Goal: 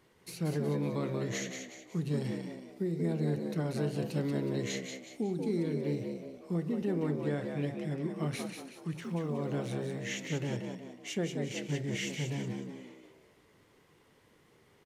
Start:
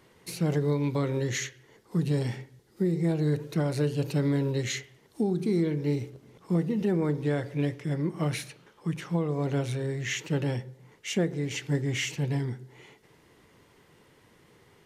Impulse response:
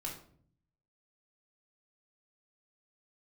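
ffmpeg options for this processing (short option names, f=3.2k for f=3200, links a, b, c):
-filter_complex "[0:a]asettb=1/sr,asplit=3[a][b][c];[a]atrim=end=9.024[d];[b]atrim=start=9.02:end=9.99,asetpts=PTS-STARTPTS,afade=t=in:d=0.004:c=qsin,afade=t=out:st=0.966:d=0.004:c=qsin,aeval=exprs='val(0)*gte(abs(val(0)),0.00224)':c=same[e];[c]atrim=start=9.986[f];[d][e]acrossfade=d=0.004:c1=hsin:c2=qsin[g];[g][f]acrossfade=d=0.004:c1=qsin:c2=hsin,asplit=6[h][i][j][k][l][m];[i]adelay=184,afreqshift=62,volume=-5.5dB[n];[j]adelay=368,afreqshift=124,volume=-13.2dB[o];[k]adelay=552,afreqshift=186,volume=-21dB[p];[l]adelay=736,afreqshift=248,volume=-28.7dB[q];[m]adelay=920,afreqshift=310,volume=-36.5dB[r];[h][n][o][p][q][r]amix=inputs=6:normalize=0,asplit=2[s][t];[1:a]atrim=start_sample=2205[u];[t][u]afir=irnorm=-1:irlink=0,volume=-15.5dB[v];[s][v]amix=inputs=2:normalize=0,volume=-7.5dB"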